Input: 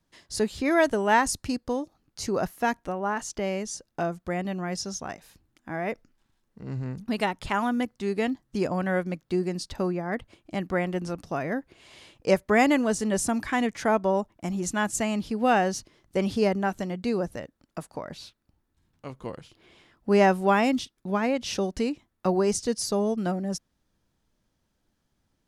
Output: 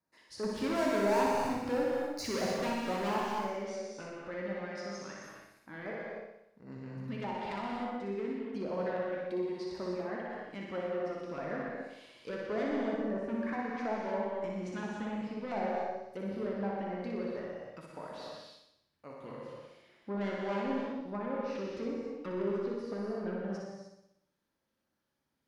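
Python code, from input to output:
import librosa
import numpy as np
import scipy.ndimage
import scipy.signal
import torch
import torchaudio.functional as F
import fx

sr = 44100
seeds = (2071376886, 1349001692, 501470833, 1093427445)

y = fx.highpass(x, sr, hz=320.0, slope=6)
y = fx.env_lowpass_down(y, sr, base_hz=1000.0, full_db=-24.0)
y = fx.peak_eq(y, sr, hz=7400.0, db=-8.5, octaves=0.84)
y = fx.leveller(y, sr, passes=3, at=(0.43, 3.19))
y = 10.0 ** (-23.5 / 20.0) * np.tanh(y / 10.0 ** (-23.5 / 20.0))
y = fx.filter_lfo_notch(y, sr, shape='square', hz=2.9, low_hz=720.0, high_hz=3200.0, q=1.4)
y = fx.room_flutter(y, sr, wall_m=10.4, rt60_s=0.79)
y = fx.rev_gated(y, sr, seeds[0], gate_ms=330, shape='flat', drr_db=-1.5)
y = y * librosa.db_to_amplitude(-8.5)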